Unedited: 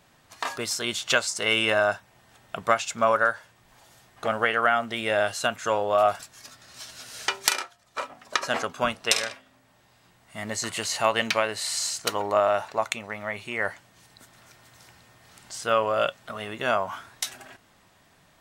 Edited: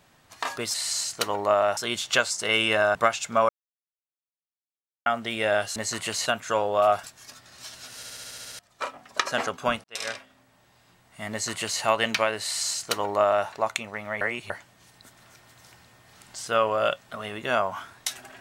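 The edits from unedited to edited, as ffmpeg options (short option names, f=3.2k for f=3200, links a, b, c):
-filter_complex "[0:a]asplit=20[a][b][c][d][e][f][g][h][i][j][k][l][m][n][o][p][q][r][s][t];[a]atrim=end=0.742[u];[b]atrim=start=11.598:end=12.632[v];[c]atrim=start=0.738:end=1.922[w];[d]atrim=start=2.608:end=3.15,asetpts=PTS-STARTPTS,afade=t=out:st=0.538:d=0.004:c=hsin[x];[e]atrim=start=3.15:end=4.72,asetpts=PTS-STARTPTS,volume=0[y];[f]atrim=start=4.72:end=5.422,asetpts=PTS-STARTPTS,afade=t=in:d=0.004:c=hsin[z];[g]atrim=start=10.468:end=10.972[aa];[h]atrim=start=5.418:end=7.192[ab];[i]atrim=start=7.118:end=7.192[ac];[j]atrim=start=7.118:end=7.192[ad];[k]atrim=start=7.118:end=7.192[ae];[l]atrim=start=7.118:end=7.192[af];[m]atrim=start=7.118:end=7.192[ag];[n]atrim=start=7.118:end=7.192[ah];[o]atrim=start=7.118:end=7.192[ai];[p]atrim=start=7.118:end=7.192[aj];[q]atrim=start=7.748:end=9,asetpts=PTS-STARTPTS,afade=t=out:st=1.248:d=0.004:c=hsin[ak];[r]atrim=start=9:end=13.372,asetpts=PTS-STARTPTS,afade=t=in:d=0.26:c=qua[al];[s]atrim=start=13.368:end=13.662,asetpts=PTS-STARTPTS,areverse[am];[t]atrim=start=13.658[an];[u][v]acrossfade=d=0.004:c1=hsin:c2=hsin[ao];[ao][w]acrossfade=d=0.004:c1=hsin:c2=hsin[ap];[x][y][z]concat=n=3:v=0:a=1[aq];[ap][aq]acrossfade=d=0.004:c1=hsin:c2=hsin[ar];[ar][aa]acrossfade=d=0.004:c1=hsin:c2=hsin[as];[as][ab]acrossfade=d=0.004:c1=hsin:c2=hsin[at];[at][ac]acrossfade=d=0.004:c1=hsin:c2=hsin[au];[au][ad]acrossfade=d=0.004:c1=hsin:c2=hsin[av];[av][ae]acrossfade=d=0.004:c1=hsin:c2=hsin[aw];[aw][af]acrossfade=d=0.004:c1=hsin:c2=hsin[ax];[ax][ag]acrossfade=d=0.004:c1=hsin:c2=hsin[ay];[ay][ah]acrossfade=d=0.004:c1=hsin:c2=hsin[az];[az][ai]acrossfade=d=0.004:c1=hsin:c2=hsin[ba];[ba][aj]acrossfade=d=0.004:c1=hsin:c2=hsin[bb];[ak][al]concat=n=2:v=0:a=1[bc];[bb][bc]acrossfade=d=0.004:c1=hsin:c2=hsin[bd];[bd][am]acrossfade=d=0.004:c1=hsin:c2=hsin[be];[be][an]acrossfade=d=0.004:c1=hsin:c2=hsin"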